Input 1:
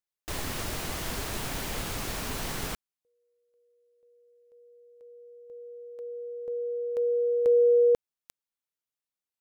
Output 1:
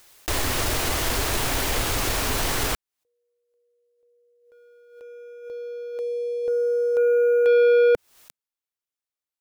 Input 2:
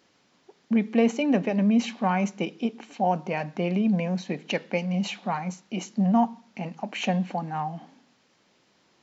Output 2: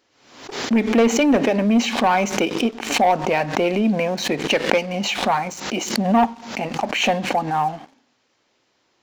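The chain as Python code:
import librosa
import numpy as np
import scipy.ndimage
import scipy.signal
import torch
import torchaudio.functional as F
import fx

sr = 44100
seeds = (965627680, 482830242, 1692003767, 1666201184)

y = fx.peak_eq(x, sr, hz=180.0, db=-14.5, octaves=0.42)
y = fx.leveller(y, sr, passes=2)
y = fx.pre_swell(y, sr, db_per_s=78.0)
y = y * librosa.db_to_amplitude(3.0)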